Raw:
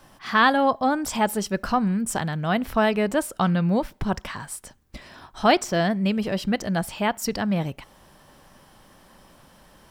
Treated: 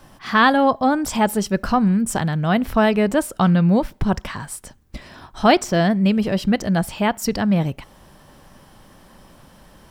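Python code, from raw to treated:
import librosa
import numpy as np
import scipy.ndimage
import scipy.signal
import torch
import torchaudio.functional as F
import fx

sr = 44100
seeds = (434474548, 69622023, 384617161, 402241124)

y = fx.low_shelf(x, sr, hz=340.0, db=5.0)
y = F.gain(torch.from_numpy(y), 2.5).numpy()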